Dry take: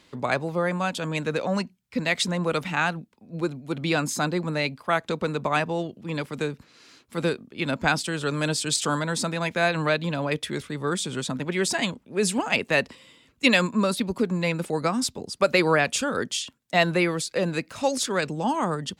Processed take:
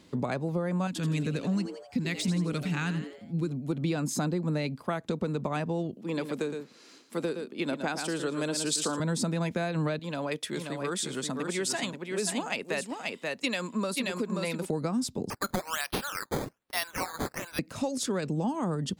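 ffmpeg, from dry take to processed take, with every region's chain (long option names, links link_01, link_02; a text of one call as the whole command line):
ffmpeg -i in.wav -filter_complex "[0:a]asettb=1/sr,asplit=3[link_01][link_02][link_03];[link_01]atrim=end=0.874[link_04];[link_02]atrim=start=0.87:end=3.51,asetpts=PTS-STARTPTS,afade=type=in:duration=0.004:curve=qsin,afade=type=out:start_time=2.636:duration=0.004:curve=qsin,equalizer=frequency=650:width=0.98:gain=-14.5,asplit=6[link_05][link_06][link_07][link_08][link_09][link_10];[link_06]adelay=84,afreqshift=130,volume=-11.5dB[link_11];[link_07]adelay=168,afreqshift=260,volume=-17.3dB[link_12];[link_08]adelay=252,afreqshift=390,volume=-23.2dB[link_13];[link_09]adelay=336,afreqshift=520,volume=-29dB[link_14];[link_10]adelay=420,afreqshift=650,volume=-34.9dB[link_15];[link_05][link_11][link_12][link_13][link_14][link_15]amix=inputs=6:normalize=0,atrim=end_sample=116424,deesser=0.55[link_16];[link_03]atrim=start=3.506[link_17];[link_04][link_16]acrossfade=duration=0.004:curve1=hsin:curve2=qsin[link_18];[link_18][link_17]acrossfade=duration=0.004:curve1=qsin:curve2=hsin,asettb=1/sr,asplit=3[link_19][link_20][link_21];[link_19]atrim=end=5.964[link_22];[link_20]atrim=start=5.96:end=9,asetpts=PTS-STARTPTS,afade=type=in:duration=0.004:curve=qsin,afade=type=out:start_time=3.036:duration=0.004:curve=qsin,highpass=310,aecho=1:1:114:0.355,atrim=end_sample=134064[link_23];[link_21]atrim=start=8.996[link_24];[link_22][link_23]acrossfade=duration=0.004:curve1=hsin:curve2=qsin[link_25];[link_25][link_24]acrossfade=duration=0.004:curve1=qsin:curve2=hsin,asettb=1/sr,asplit=3[link_26][link_27][link_28];[link_26]atrim=end=9.994[link_29];[link_27]atrim=start=9.99:end=14.69,asetpts=PTS-STARTPTS,afade=type=in:duration=0.004:curve=qsin,afade=type=out:start_time=4.696:duration=0.004:curve=qsin,highpass=frequency=760:poles=1,aecho=1:1:531:0.501,atrim=end_sample=207270[link_30];[link_28]atrim=start=14.686[link_31];[link_29][link_30]acrossfade=duration=0.004:curve1=hsin:curve2=qsin[link_32];[link_32][link_31]acrossfade=duration=0.004:curve1=qsin:curve2=hsin,asettb=1/sr,asplit=3[link_33][link_34][link_35];[link_33]atrim=end=15.304[link_36];[link_34]atrim=start=15.3:end=17.59,asetpts=PTS-STARTPTS,afade=type=in:duration=0.004:curve=qsin,afade=type=out:start_time=2.286:duration=0.004:curve=qsin,highpass=frequency=980:width=0.5412,highpass=frequency=980:width=1.3066,acrusher=samples=11:mix=1:aa=0.000001:lfo=1:lforange=11:lforate=1.2[link_37];[link_35]atrim=start=17.586[link_38];[link_36][link_37]acrossfade=duration=0.004:curve1=hsin:curve2=qsin[link_39];[link_39][link_38]acrossfade=duration=0.004:curve1=qsin:curve2=hsin,equalizer=frequency=270:width=0.34:gain=10,acompressor=threshold=-22dB:ratio=6,bass=frequency=250:gain=5,treble=frequency=4000:gain=6,volume=-6.5dB" out.wav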